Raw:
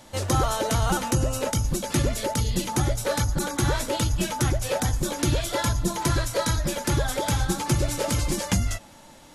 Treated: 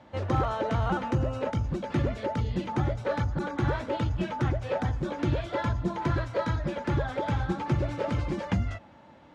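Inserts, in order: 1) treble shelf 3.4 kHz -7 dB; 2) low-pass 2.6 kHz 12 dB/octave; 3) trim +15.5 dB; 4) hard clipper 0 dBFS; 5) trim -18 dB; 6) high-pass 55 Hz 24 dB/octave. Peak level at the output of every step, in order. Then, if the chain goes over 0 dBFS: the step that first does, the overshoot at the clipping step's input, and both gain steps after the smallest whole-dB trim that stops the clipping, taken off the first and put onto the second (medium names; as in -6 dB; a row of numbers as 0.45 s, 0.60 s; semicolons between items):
-12.5 dBFS, -12.5 dBFS, +3.0 dBFS, 0.0 dBFS, -18.0 dBFS, -14.0 dBFS; step 3, 3.0 dB; step 3 +12.5 dB, step 5 -15 dB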